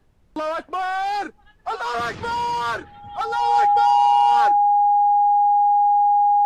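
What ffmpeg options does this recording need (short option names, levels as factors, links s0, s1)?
-af "bandreject=f=820:w=30,agate=range=0.0891:threshold=0.00631"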